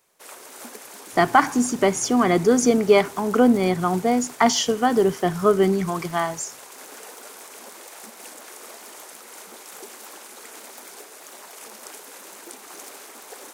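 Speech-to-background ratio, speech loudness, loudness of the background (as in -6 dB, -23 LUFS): 20.0 dB, -20.0 LUFS, -40.0 LUFS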